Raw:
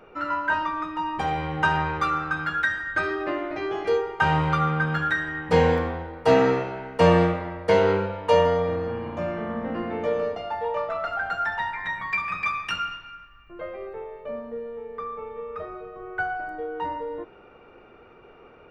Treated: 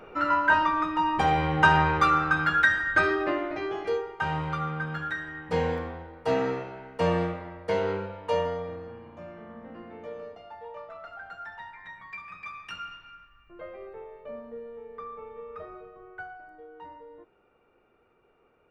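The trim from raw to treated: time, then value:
3.02 s +3 dB
4.20 s -8 dB
8.36 s -8 dB
9.07 s -14.5 dB
12.42 s -14.5 dB
13.10 s -6.5 dB
15.78 s -6.5 dB
16.40 s -15.5 dB

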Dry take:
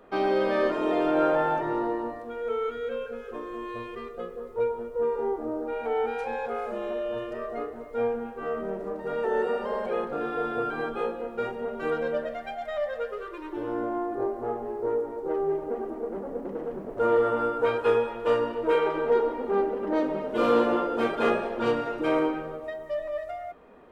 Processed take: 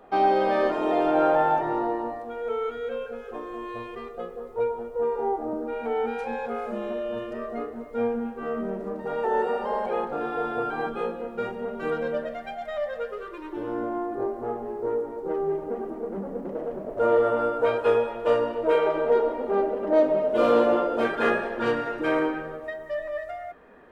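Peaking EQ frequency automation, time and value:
peaking EQ +10.5 dB 0.3 oct
770 Hz
from 5.53 s 220 Hz
from 9.06 s 830 Hz
from 10.87 s 190 Hz
from 16.49 s 620 Hz
from 21.05 s 1.7 kHz

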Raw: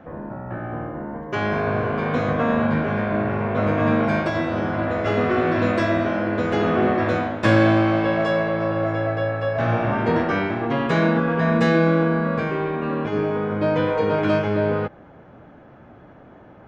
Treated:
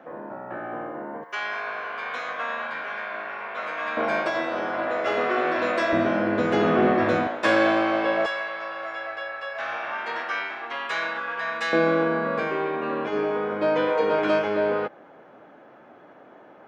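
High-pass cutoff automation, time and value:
360 Hz
from 1.24 s 1.2 kHz
from 3.97 s 480 Hz
from 5.93 s 160 Hz
from 7.27 s 430 Hz
from 8.26 s 1.2 kHz
from 11.73 s 350 Hz

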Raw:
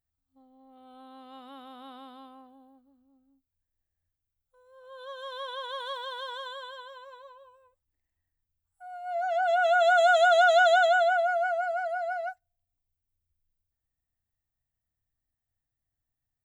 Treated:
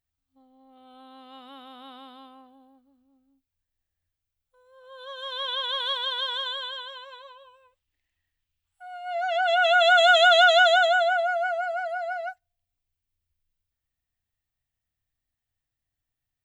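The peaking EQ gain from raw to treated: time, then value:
peaking EQ 2.9 kHz 1.5 oct
4.99 s +6 dB
5.48 s +15 dB
10.37 s +15 dB
10.89 s +7 dB

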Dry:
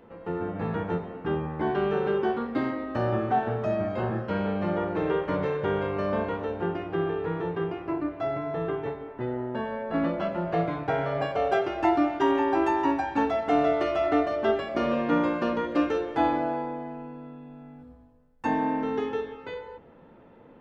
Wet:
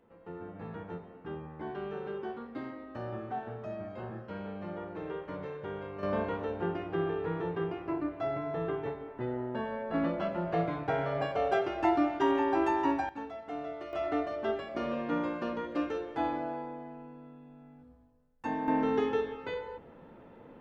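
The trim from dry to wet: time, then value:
-12.5 dB
from 6.03 s -4 dB
from 13.09 s -16 dB
from 13.93 s -8 dB
from 18.68 s 0 dB

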